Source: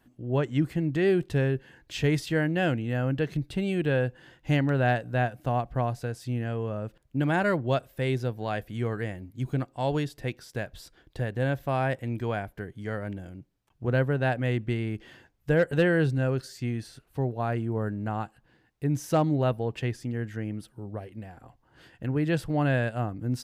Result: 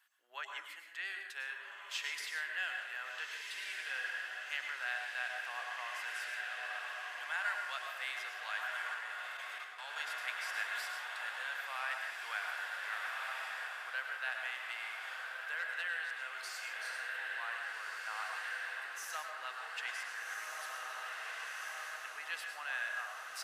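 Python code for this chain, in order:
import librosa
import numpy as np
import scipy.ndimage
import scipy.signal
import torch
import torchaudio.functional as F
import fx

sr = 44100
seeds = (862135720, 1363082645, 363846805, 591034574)

p1 = x + fx.echo_diffused(x, sr, ms=1520, feedback_pct=73, wet_db=-5.0, dry=0)
p2 = fx.rider(p1, sr, range_db=4, speed_s=0.5)
p3 = scipy.signal.sosfilt(scipy.signal.butter(4, 1200.0, 'highpass', fs=sr, output='sos'), p2)
p4 = fx.level_steps(p3, sr, step_db=14, at=(8.94, 9.96))
p5 = fx.rev_plate(p4, sr, seeds[0], rt60_s=0.8, hf_ratio=0.5, predelay_ms=90, drr_db=3.0)
y = p5 * 10.0 ** (-4.0 / 20.0)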